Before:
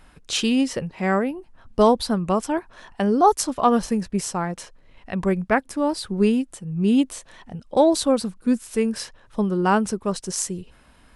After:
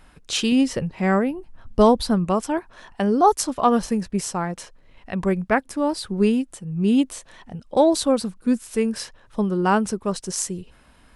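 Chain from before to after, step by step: 0.52–2.25 low shelf 170 Hz +7.5 dB

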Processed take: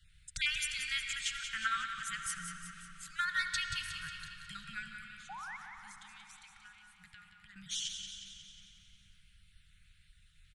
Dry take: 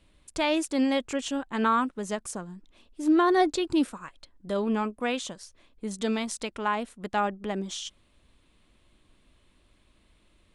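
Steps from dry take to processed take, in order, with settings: random spectral dropouts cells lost 22%; Chebyshev band-stop 160–1400 Hz, order 5; 4.86–7.56 compressor 10:1, threshold -55 dBFS, peak gain reduction 23 dB; 5.29–5.57 painted sound rise 730–2300 Hz -45 dBFS; feedback echo 0.181 s, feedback 56%, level -8 dB; reverb RT60 4.3 s, pre-delay 66 ms, DRR 6 dB

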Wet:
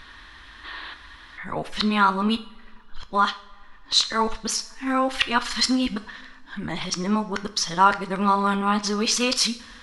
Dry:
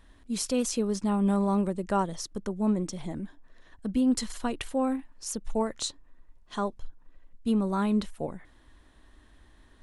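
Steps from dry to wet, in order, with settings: whole clip reversed; band shelf 2300 Hz +15.5 dB 2.9 oct; in parallel at 0 dB: compressor, threshold -30 dBFS, peak gain reduction 17.5 dB; on the sum: spectral gain 0.64–0.93, 290–4800 Hz +10 dB; two-slope reverb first 0.49 s, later 2.1 s, from -20 dB, DRR 10 dB; gain -1.5 dB

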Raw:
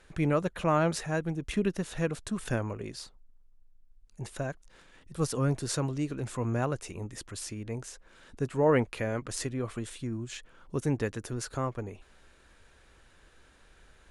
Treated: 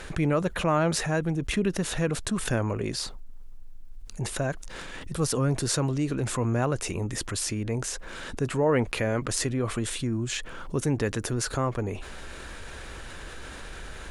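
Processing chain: fast leveller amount 50%

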